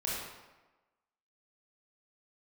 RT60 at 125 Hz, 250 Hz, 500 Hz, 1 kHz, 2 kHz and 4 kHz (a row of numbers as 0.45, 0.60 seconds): 1.0, 1.1, 1.1, 1.2, 1.0, 0.80 seconds